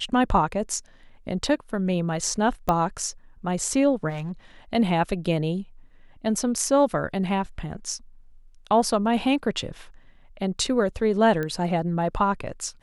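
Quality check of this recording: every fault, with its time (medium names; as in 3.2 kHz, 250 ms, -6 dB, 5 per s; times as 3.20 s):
2.69 s: pop -10 dBFS
4.09–4.32 s: clipped -27.5 dBFS
11.43 s: pop -17 dBFS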